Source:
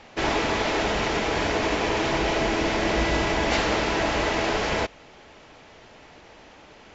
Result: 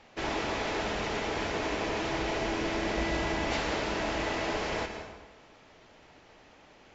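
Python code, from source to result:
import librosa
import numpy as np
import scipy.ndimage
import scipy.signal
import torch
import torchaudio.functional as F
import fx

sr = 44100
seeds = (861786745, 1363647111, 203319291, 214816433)

y = fx.rev_plate(x, sr, seeds[0], rt60_s=1.2, hf_ratio=0.75, predelay_ms=110, drr_db=6.0)
y = y * 10.0 ** (-8.5 / 20.0)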